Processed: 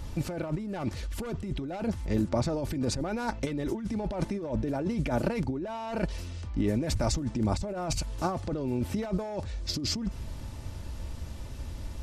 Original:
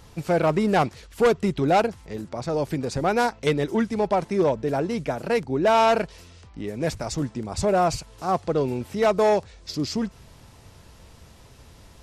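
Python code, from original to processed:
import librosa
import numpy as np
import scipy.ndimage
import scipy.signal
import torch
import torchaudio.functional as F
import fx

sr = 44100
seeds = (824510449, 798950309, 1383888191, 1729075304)

y = fx.low_shelf(x, sr, hz=230.0, db=11.5)
y = y + 0.39 * np.pad(y, (int(3.4 * sr / 1000.0), 0))[:len(y)]
y = fx.over_compress(y, sr, threshold_db=-26.0, ratio=-1.0)
y = y * librosa.db_to_amplitude(-4.5)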